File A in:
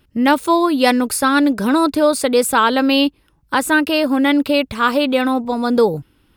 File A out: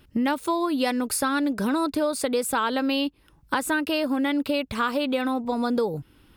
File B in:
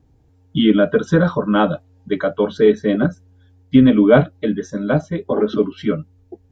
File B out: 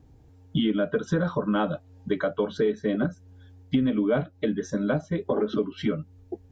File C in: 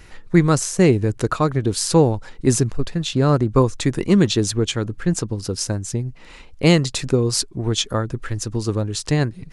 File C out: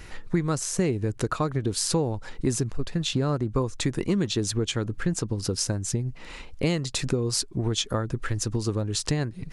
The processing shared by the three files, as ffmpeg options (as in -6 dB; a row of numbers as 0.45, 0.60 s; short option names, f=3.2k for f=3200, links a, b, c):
-af "acompressor=threshold=-25dB:ratio=4,volume=1.5dB"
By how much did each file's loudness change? -9.5, -10.0, -7.5 LU